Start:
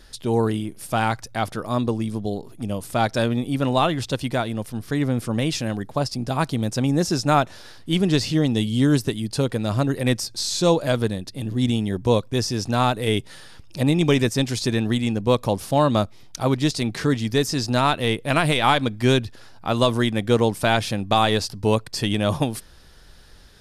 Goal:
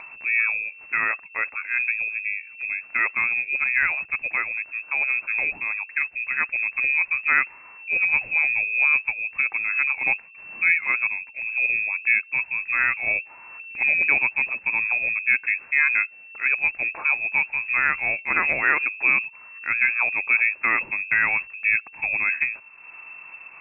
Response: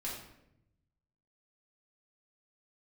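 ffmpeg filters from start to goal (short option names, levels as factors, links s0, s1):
-af "lowpass=f=2300:t=q:w=0.5098,lowpass=f=2300:t=q:w=0.6013,lowpass=f=2300:t=q:w=0.9,lowpass=f=2300:t=q:w=2.563,afreqshift=-2700,acompressor=mode=upward:threshold=0.0316:ratio=2.5,volume=0.794"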